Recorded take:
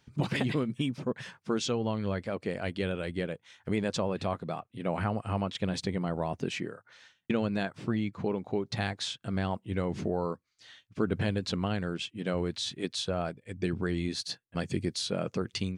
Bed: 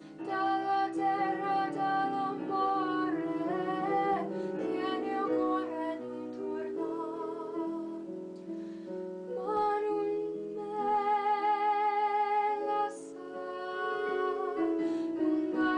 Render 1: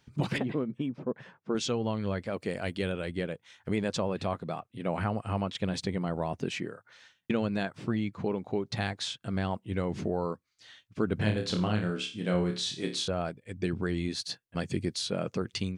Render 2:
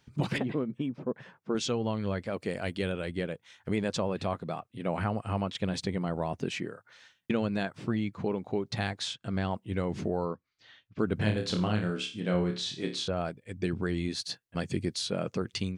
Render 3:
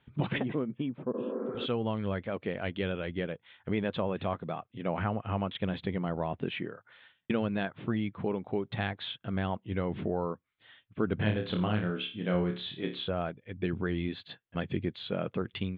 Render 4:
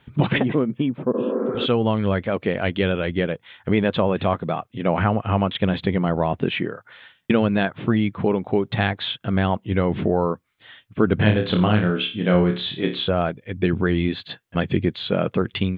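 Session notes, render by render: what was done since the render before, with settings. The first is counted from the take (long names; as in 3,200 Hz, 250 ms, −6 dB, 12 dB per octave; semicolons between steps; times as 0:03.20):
0:00.38–0:01.55: resonant band-pass 430 Hz, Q 0.52; 0:02.33–0:02.91: high-shelf EQ 5,600 Hz → 9,200 Hz +9 dB; 0:11.15–0:13.08: flutter between parallel walls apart 4.8 metres, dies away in 0.34 s
0:09.14–0:09.56: low-pass filter 8,200 Hz 24 dB per octave; 0:10.25–0:10.99: high-frequency loss of the air 170 metres; 0:12.20–0:13.17: high-frequency loss of the air 54 metres
0:01.17–0:01.63: healed spectral selection 200–2,400 Hz both; elliptic low-pass filter 3,500 Hz, stop band 40 dB
level +11.5 dB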